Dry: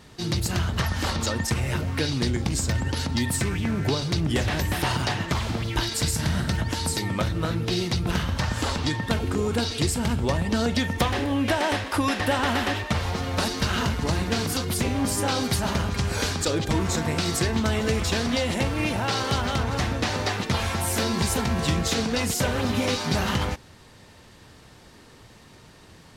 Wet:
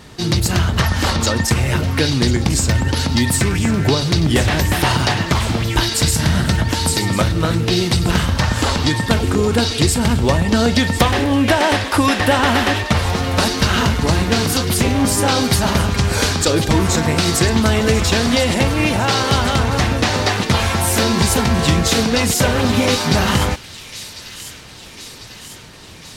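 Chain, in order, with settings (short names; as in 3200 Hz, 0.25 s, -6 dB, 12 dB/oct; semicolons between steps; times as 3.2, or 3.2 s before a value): thin delay 1.048 s, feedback 64%, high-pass 2700 Hz, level -12 dB; gain +9 dB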